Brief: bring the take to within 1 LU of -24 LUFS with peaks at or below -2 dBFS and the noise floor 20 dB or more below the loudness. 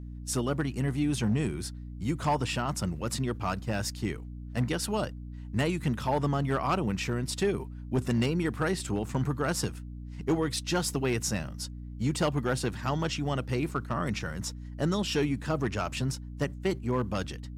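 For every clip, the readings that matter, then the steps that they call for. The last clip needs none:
clipped 0.6%; flat tops at -20.0 dBFS; hum 60 Hz; harmonics up to 300 Hz; hum level -38 dBFS; loudness -30.5 LUFS; peak -20.0 dBFS; loudness target -24.0 LUFS
-> clip repair -20 dBFS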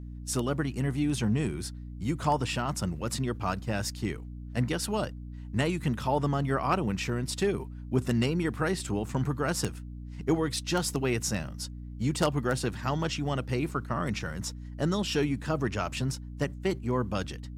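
clipped 0.0%; hum 60 Hz; harmonics up to 300 Hz; hum level -38 dBFS
-> notches 60/120/180/240/300 Hz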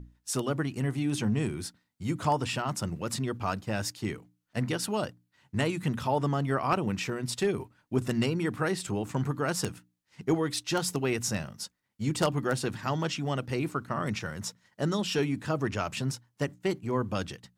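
hum none; loudness -31.0 LUFS; peak -10.5 dBFS; loudness target -24.0 LUFS
-> gain +7 dB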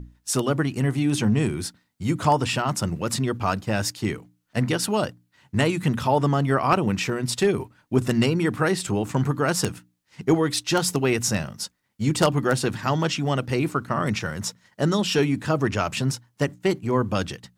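loudness -24.0 LUFS; peak -3.5 dBFS; noise floor -70 dBFS

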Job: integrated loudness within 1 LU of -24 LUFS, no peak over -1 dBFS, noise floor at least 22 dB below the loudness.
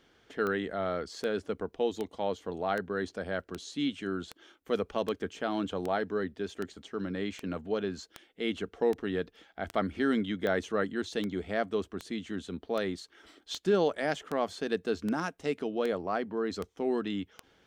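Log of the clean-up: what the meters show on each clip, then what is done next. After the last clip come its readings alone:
clicks 23; loudness -33.0 LUFS; peak -15.0 dBFS; loudness target -24.0 LUFS
-> de-click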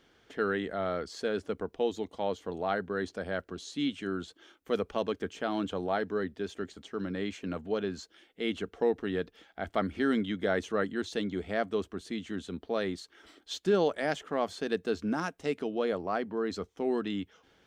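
clicks 0; loudness -33.0 LUFS; peak -15.0 dBFS; loudness target -24.0 LUFS
-> gain +9 dB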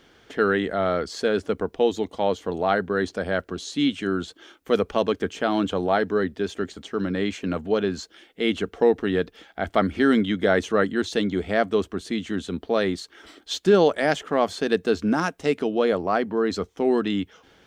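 loudness -24.0 LUFS; peak -6.0 dBFS; noise floor -59 dBFS

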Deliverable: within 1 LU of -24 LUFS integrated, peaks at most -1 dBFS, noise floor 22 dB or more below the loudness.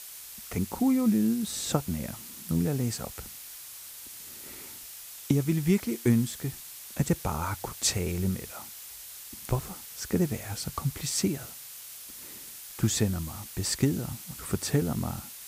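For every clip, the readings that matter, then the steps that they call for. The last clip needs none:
noise floor -45 dBFS; noise floor target -52 dBFS; loudness -29.5 LUFS; peak -10.5 dBFS; loudness target -24.0 LUFS
-> denoiser 7 dB, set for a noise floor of -45 dBFS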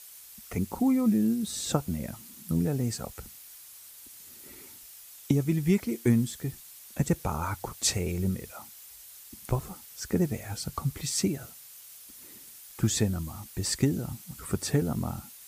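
noise floor -49 dBFS; noise floor target -52 dBFS
-> denoiser 6 dB, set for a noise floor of -49 dBFS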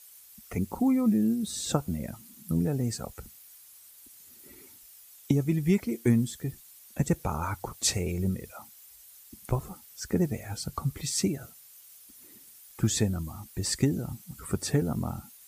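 noise floor -53 dBFS; loudness -29.5 LUFS; peak -10.5 dBFS; loudness target -24.0 LUFS
-> gain +5.5 dB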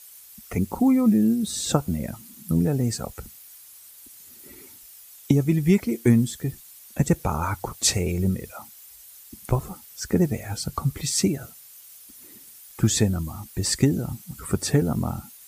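loudness -24.0 LUFS; peak -5.0 dBFS; noise floor -48 dBFS

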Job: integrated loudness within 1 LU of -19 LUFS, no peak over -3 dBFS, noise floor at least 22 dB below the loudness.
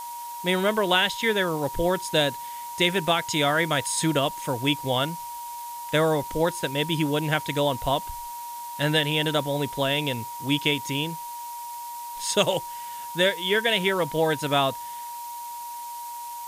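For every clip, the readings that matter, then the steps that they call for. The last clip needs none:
steady tone 950 Hz; tone level -34 dBFS; noise floor -36 dBFS; noise floor target -47 dBFS; loudness -24.5 LUFS; peak -6.5 dBFS; loudness target -19.0 LUFS
-> notch 950 Hz, Q 30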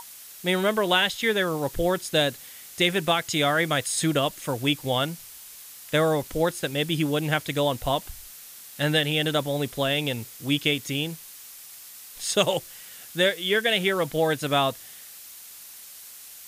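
steady tone none; noise floor -45 dBFS; noise floor target -47 dBFS
-> denoiser 6 dB, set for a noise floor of -45 dBFS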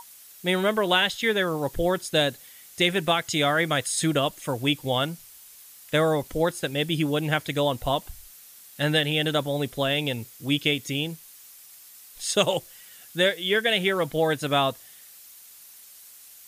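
noise floor -49 dBFS; loudness -24.5 LUFS; peak -7.0 dBFS; loudness target -19.0 LUFS
-> gain +5.5 dB; limiter -3 dBFS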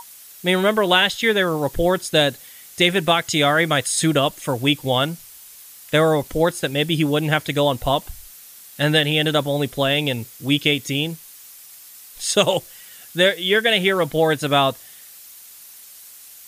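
loudness -19.0 LUFS; peak -3.0 dBFS; noise floor -43 dBFS

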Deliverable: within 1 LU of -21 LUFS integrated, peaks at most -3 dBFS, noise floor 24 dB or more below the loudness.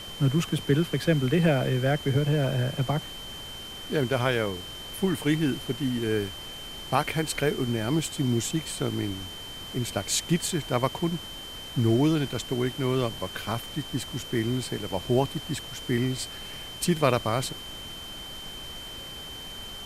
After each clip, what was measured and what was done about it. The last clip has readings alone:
steady tone 3100 Hz; tone level -39 dBFS; noise floor -40 dBFS; noise floor target -52 dBFS; loudness -28.0 LUFS; peak -8.0 dBFS; loudness target -21.0 LUFS
-> notch 3100 Hz, Q 30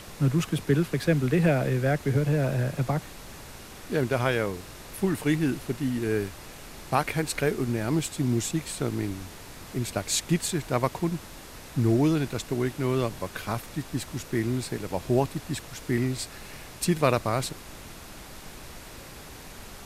steady tone none; noise floor -44 dBFS; noise floor target -52 dBFS
-> noise print and reduce 8 dB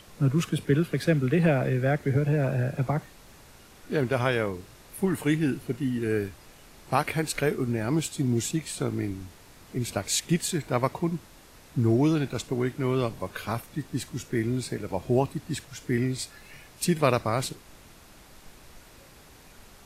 noise floor -52 dBFS; loudness -27.5 LUFS; peak -8.5 dBFS; loudness target -21.0 LUFS
-> gain +6.5 dB; limiter -3 dBFS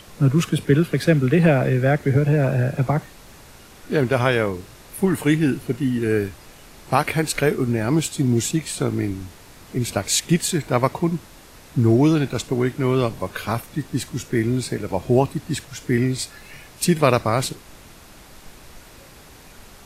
loudness -21.0 LUFS; peak -3.0 dBFS; noise floor -46 dBFS

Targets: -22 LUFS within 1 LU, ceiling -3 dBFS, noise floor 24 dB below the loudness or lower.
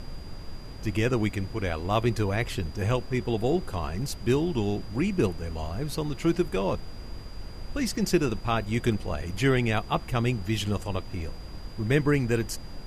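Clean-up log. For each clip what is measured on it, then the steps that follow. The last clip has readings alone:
steady tone 4800 Hz; tone level -52 dBFS; noise floor -40 dBFS; noise floor target -52 dBFS; loudness -28.0 LUFS; peak -10.0 dBFS; loudness target -22.0 LUFS
-> notch 4800 Hz, Q 30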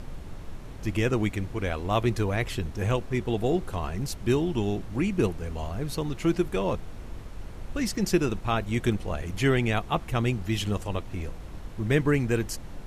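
steady tone none; noise floor -41 dBFS; noise floor target -52 dBFS
-> noise print and reduce 11 dB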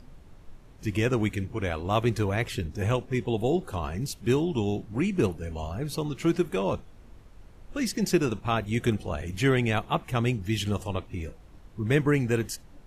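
noise floor -50 dBFS; noise floor target -52 dBFS
-> noise print and reduce 6 dB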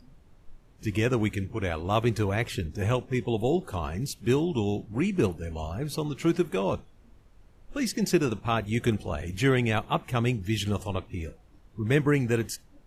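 noise floor -56 dBFS; loudness -28.0 LUFS; peak -10.5 dBFS; loudness target -22.0 LUFS
-> gain +6 dB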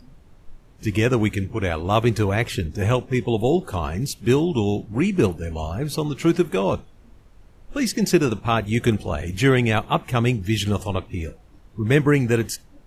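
loudness -22.0 LUFS; peak -4.5 dBFS; noise floor -50 dBFS

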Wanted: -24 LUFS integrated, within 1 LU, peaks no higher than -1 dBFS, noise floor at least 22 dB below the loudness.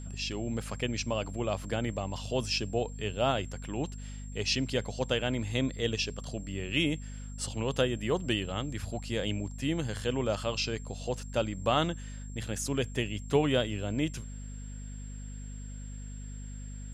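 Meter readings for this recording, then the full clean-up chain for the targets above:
hum 50 Hz; harmonics up to 250 Hz; hum level -39 dBFS; steady tone 7500 Hz; tone level -52 dBFS; loudness -32.0 LUFS; peak -12.5 dBFS; loudness target -24.0 LUFS
-> notches 50/100/150/200/250 Hz; notch 7500 Hz, Q 30; gain +8 dB

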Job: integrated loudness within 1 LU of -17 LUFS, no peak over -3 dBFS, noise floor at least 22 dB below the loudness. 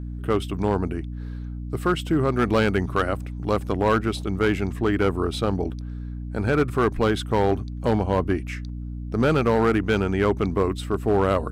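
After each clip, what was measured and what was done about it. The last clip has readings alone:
clipped 1.2%; flat tops at -13.0 dBFS; hum 60 Hz; harmonics up to 300 Hz; hum level -30 dBFS; loudness -23.5 LUFS; peak -13.0 dBFS; loudness target -17.0 LUFS
-> clip repair -13 dBFS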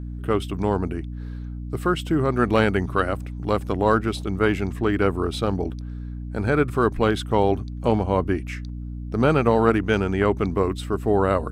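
clipped 0.0%; hum 60 Hz; harmonics up to 300 Hz; hum level -30 dBFS
-> notches 60/120/180/240/300 Hz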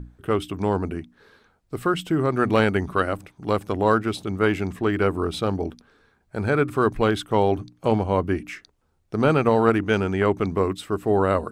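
hum none; loudness -23.0 LUFS; peak -4.0 dBFS; loudness target -17.0 LUFS
-> gain +6 dB; limiter -3 dBFS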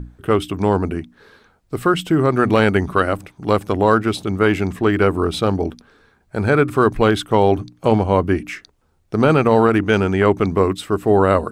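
loudness -17.5 LUFS; peak -3.0 dBFS; noise floor -60 dBFS

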